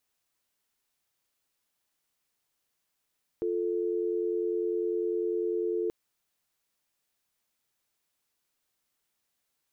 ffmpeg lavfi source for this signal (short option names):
-f lavfi -i "aevalsrc='0.0335*(sin(2*PI*350*t)+sin(2*PI*440*t))':d=2.48:s=44100"